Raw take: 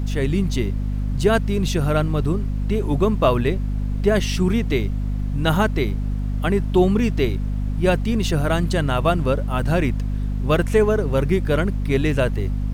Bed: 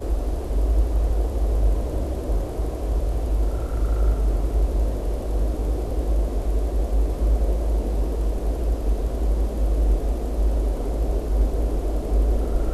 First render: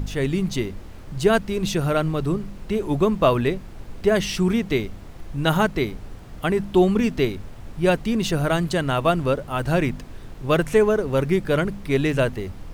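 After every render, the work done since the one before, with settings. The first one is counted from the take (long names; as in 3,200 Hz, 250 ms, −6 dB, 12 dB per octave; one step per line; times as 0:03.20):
hum removal 50 Hz, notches 5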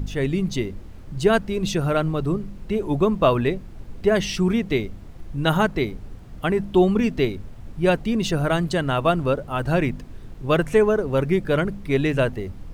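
broadband denoise 6 dB, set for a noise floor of −39 dBFS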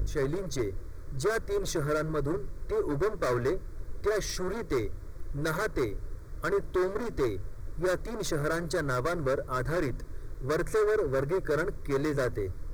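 gain into a clipping stage and back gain 22.5 dB
phaser with its sweep stopped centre 770 Hz, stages 6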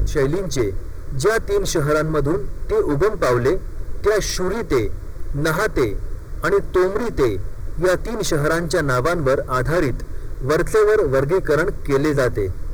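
level +11 dB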